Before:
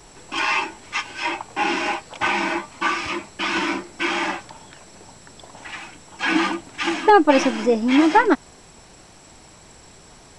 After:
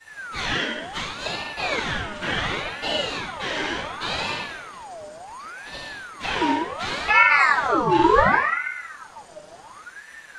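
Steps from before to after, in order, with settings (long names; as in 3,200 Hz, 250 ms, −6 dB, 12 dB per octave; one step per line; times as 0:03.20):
flanger swept by the level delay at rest 7 ms, full sweep at −13.5 dBFS
rectangular room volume 320 cubic metres, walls mixed, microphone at 7.5 metres
in parallel at −2 dB: downward compressor, threshold −12 dBFS, peak gain reduction 18.5 dB
on the sum: ring modulator whose carrier an LFO sweeps 1,200 Hz, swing 50%, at 0.69 Hz
level −16.5 dB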